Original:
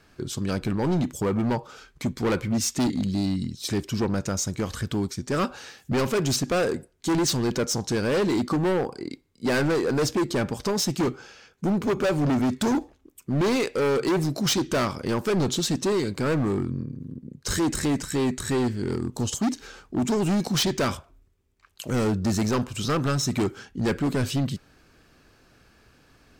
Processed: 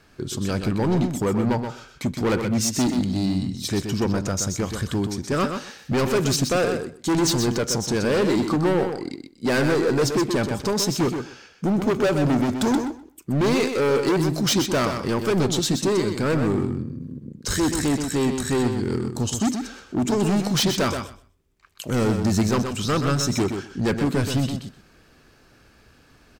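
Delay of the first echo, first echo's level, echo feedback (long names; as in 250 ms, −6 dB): 126 ms, −7.0 dB, 15%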